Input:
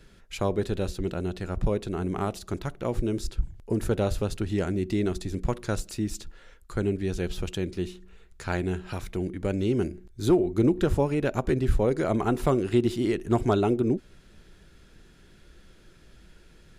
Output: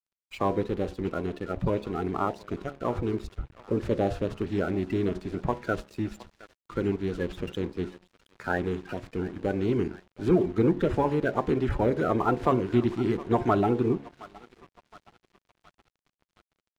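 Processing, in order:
spectral magnitudes quantised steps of 30 dB
in parallel at −6.5 dB: soft clipping −20 dBFS, distortion −13 dB
on the sum: low-pass filter 1,700 Hz 12 dB per octave
spectral tilt +3.5 dB per octave
hum removal 69.78 Hz, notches 15
on a send: feedback echo with a high-pass in the loop 717 ms, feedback 78%, high-pass 810 Hz, level −15 dB
on the sum: dead-zone distortion −49.5 dBFS
low-shelf EQ 380 Hz +7.5 dB

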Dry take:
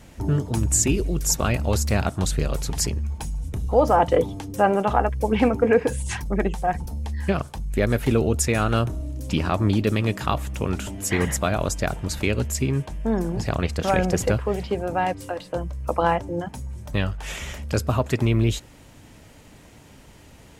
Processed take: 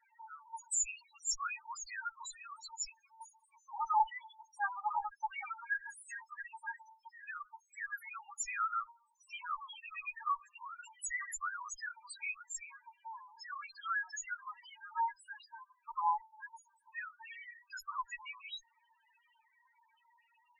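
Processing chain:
Butterworth high-pass 880 Hz 72 dB per octave
harmonic generator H 7 −28 dB, 8 −28 dB, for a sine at −8.5 dBFS
spectral peaks only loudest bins 2
level +1.5 dB

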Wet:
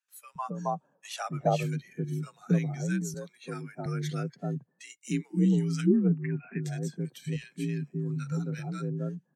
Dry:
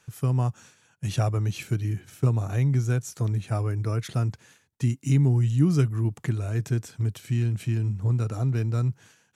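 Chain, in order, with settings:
spectral magnitudes quantised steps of 15 dB
0:05.96–0:06.63: linear-phase brick-wall low-pass 2,800 Hz
frequency shifter +46 Hz
noise gate −53 dBFS, range −12 dB
noise reduction from a noise print of the clip's start 13 dB
0:00.38–0:01.34: flat-topped bell 730 Hz +11.5 dB
0:02.87–0:03.59: high-pass filter 250 Hz 12 dB per octave
multiband delay without the direct sound highs, lows 270 ms, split 1,000 Hz
level −1.5 dB

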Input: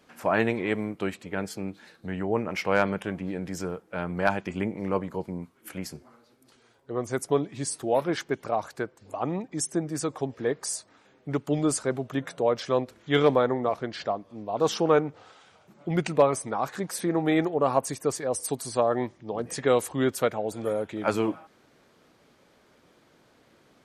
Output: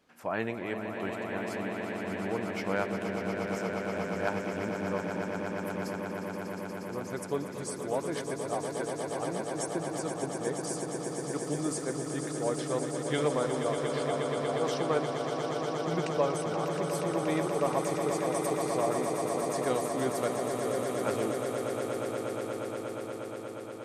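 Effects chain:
echo that builds up and dies away 119 ms, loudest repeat 8, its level −8.5 dB
level −8.5 dB

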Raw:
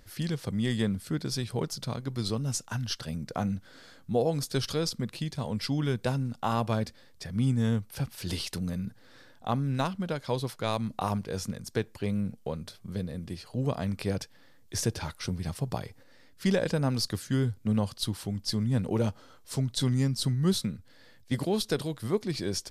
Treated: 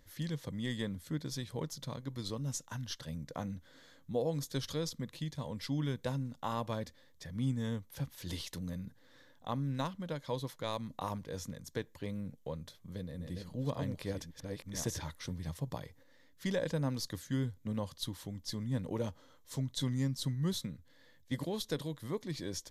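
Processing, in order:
0:12.63–0:15.33: delay that plays each chunk backwards 559 ms, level −3.5 dB
EQ curve with evenly spaced ripples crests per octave 1.1, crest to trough 6 dB
level −8 dB

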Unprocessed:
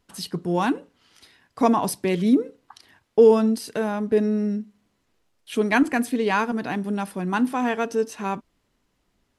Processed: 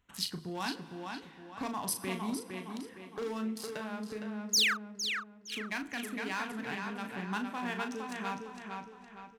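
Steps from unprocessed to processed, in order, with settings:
adaptive Wiener filter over 9 samples
in parallel at −0.5 dB: brickwall limiter −14 dBFS, peak gain reduction 8.5 dB
on the sum: dense smooth reverb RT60 2.1 s, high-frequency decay 1×, DRR 17 dB
downward compressor 2 to 1, threshold −27 dBFS, peak gain reduction 11 dB
sound drawn into the spectrogram fall, 0:04.53–0:04.74, 1,100–7,100 Hz −18 dBFS
gain into a clipping stage and back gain 16.5 dB
guitar amp tone stack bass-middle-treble 5-5-5
double-tracking delay 37 ms −7.5 dB
tape delay 460 ms, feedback 44%, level −4 dB, low-pass 4,600 Hz
speech leveller within 4 dB 2 s

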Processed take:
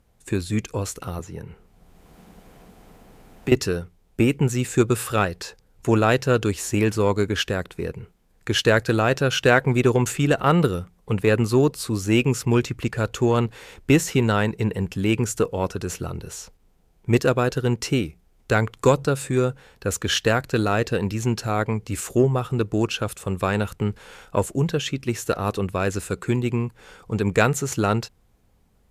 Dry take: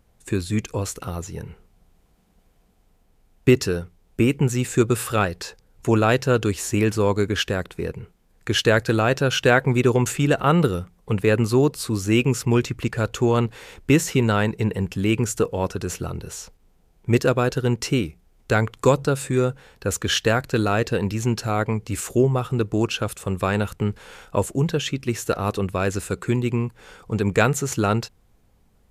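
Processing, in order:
harmonic generator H 2 −21 dB, 4 −43 dB, 7 −36 dB, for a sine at −3.5 dBFS
0:01.19–0:03.52: multiband upward and downward compressor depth 70%

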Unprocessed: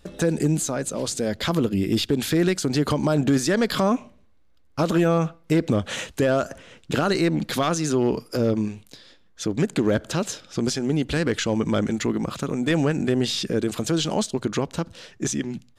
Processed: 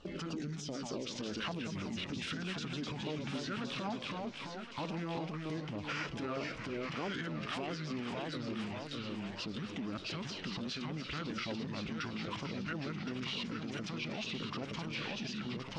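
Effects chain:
downward compressor 10 to 1, threshold −30 dBFS, peak gain reduction 14.5 dB
delay with pitch and tempo change per echo 100 ms, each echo −1 semitone, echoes 3, each echo −6 dB
auto-filter notch saw down 3.3 Hz 340–2,700 Hz
brickwall limiter −31 dBFS, peak gain reduction 11.5 dB
formants moved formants −4 semitones
low-pass filter 3,700 Hz 12 dB per octave
low-shelf EQ 210 Hz −11.5 dB
feedback echo with a high-pass in the loop 1,067 ms, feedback 51%, high-pass 900 Hz, level −7 dB
level +4.5 dB

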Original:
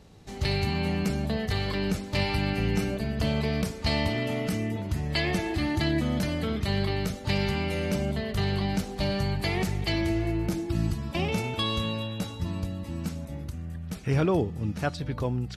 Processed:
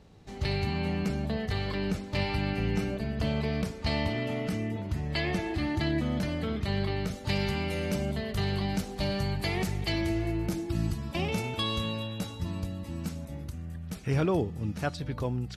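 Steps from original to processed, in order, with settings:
high-shelf EQ 6,000 Hz −8 dB, from 0:07.11 +2 dB
level −2.5 dB

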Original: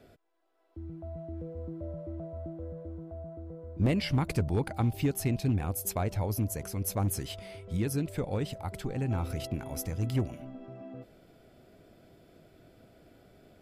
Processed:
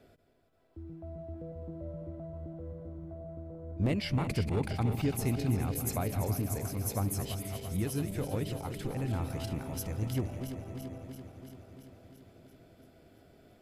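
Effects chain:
feedback delay that plays each chunk backwards 169 ms, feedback 82%, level −9 dB
level −3 dB

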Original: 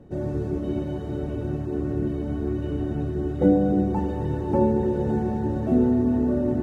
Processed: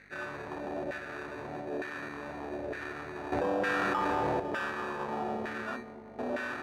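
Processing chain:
0:01.55–0:02.02: high-pass filter 89 Hz
0:05.76–0:06.19: first difference
mains-hum notches 60/120/180/240/300/360 Hz
in parallel at −1.5 dB: brickwall limiter −20 dBFS, peak gain reduction 11 dB
on the sum: mains hum 50 Hz, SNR 12 dB
decimation without filtering 21×
hard clipping −20.5 dBFS, distortion −9 dB
auto-filter band-pass saw down 1.1 Hz 590–1,700 Hz
delay with a low-pass on its return 191 ms, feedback 76%, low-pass 630 Hz, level −12 dB
0:03.32–0:04.40: envelope flattener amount 100%

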